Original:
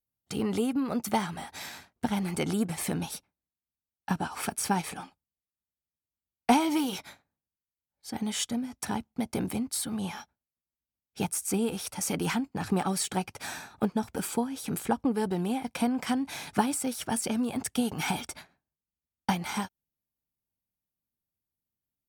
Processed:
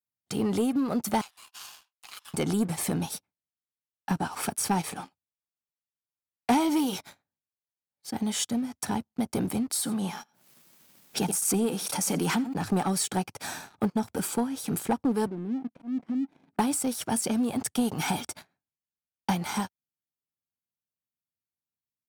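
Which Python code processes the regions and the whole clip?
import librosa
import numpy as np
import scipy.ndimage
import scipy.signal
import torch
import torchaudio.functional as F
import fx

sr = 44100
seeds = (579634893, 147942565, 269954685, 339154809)

y = fx.chain(x, sr, fx.steep_highpass(hz=1700.0, slope=96),
    fx.ring_mod(carrier_hz=880.0), at=(1.21, 2.34))
y = fx.chain(y, sr, fx.highpass(hz=140.0, slope=24),
    fx.echo_single(ms=86, db=-20.5),
    fx.pre_swell(db_per_s=37.0), at=(9.7, 12.56))
y = fx.chain(y, sr, fx.overload_stage(gain_db=27.0),
    fx.bandpass_q(hz=260.0, q=2.6),
    fx.auto_swell(attack_ms=136.0), at=(15.26, 16.59))
y = scipy.signal.sosfilt(scipy.signal.butter(4, 80.0, 'highpass', fs=sr, output='sos'), y)
y = fx.dynamic_eq(y, sr, hz=2300.0, q=1.1, threshold_db=-50.0, ratio=4.0, max_db=-4)
y = fx.leveller(y, sr, passes=2)
y = F.gain(torch.from_numpy(y), -4.5).numpy()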